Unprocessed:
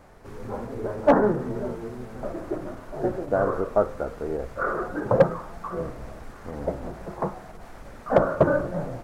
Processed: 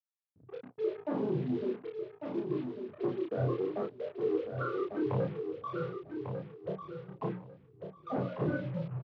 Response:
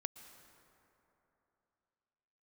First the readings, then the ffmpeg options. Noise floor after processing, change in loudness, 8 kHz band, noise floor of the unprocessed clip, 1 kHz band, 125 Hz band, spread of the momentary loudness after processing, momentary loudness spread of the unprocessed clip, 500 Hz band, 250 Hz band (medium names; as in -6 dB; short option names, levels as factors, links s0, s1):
-64 dBFS, -9.5 dB, no reading, -44 dBFS, -14.0 dB, -4.5 dB, 11 LU, 20 LU, -10.5 dB, -6.5 dB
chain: -filter_complex "[0:a]afftfilt=real='re*gte(hypot(re,im),0.2)':imag='im*gte(hypot(re,im),0.2)':win_size=1024:overlap=0.75,equalizer=f=600:w=1.6:g=-11,bandreject=f=60:t=h:w=6,bandreject=f=120:t=h:w=6,bandreject=f=180:t=h:w=6,bandreject=f=240:t=h:w=6,bandreject=f=300:t=h:w=6,acrossover=split=330[s0][s1];[s0]alimiter=level_in=1.58:limit=0.0631:level=0:latency=1:release=106,volume=0.631[s2];[s1]acompressor=threshold=0.01:ratio=8[s3];[s2][s3]amix=inputs=2:normalize=0,flanger=delay=20:depth=3:speed=1.3,aeval=exprs='val(0)+0.000398*(sin(2*PI*50*n/s)+sin(2*PI*2*50*n/s)/2+sin(2*PI*3*50*n/s)/3+sin(2*PI*4*50*n/s)/4+sin(2*PI*5*50*n/s)/5)':c=same,acrusher=bits=8:mix=0:aa=0.5,asoftclip=type=tanh:threshold=0.0224,highpass=f=120:w=0.5412,highpass=f=120:w=1.3066,equalizer=f=120:t=q:w=4:g=7,equalizer=f=210:t=q:w=4:g=-6,equalizer=f=430:t=q:w=4:g=4,lowpass=f=3500:w=0.5412,lowpass=f=3500:w=1.3066,asplit=2[s4][s5];[s5]adelay=32,volume=0.75[s6];[s4][s6]amix=inputs=2:normalize=0,aecho=1:1:1147|2294|3441:0.447|0.0938|0.0197,volume=2.11"